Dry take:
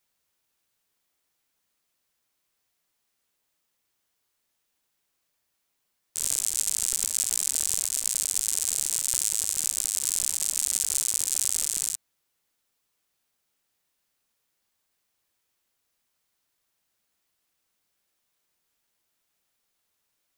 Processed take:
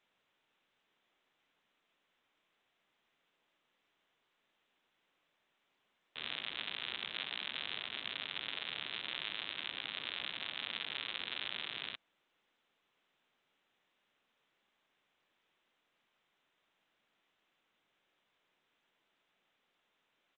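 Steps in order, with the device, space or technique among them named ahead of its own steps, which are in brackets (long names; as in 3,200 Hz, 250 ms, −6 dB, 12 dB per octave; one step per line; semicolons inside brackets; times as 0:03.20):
Bluetooth headset (high-pass filter 180 Hz 12 dB per octave; downsampling to 8,000 Hz; level +4.5 dB; SBC 64 kbit/s 16,000 Hz)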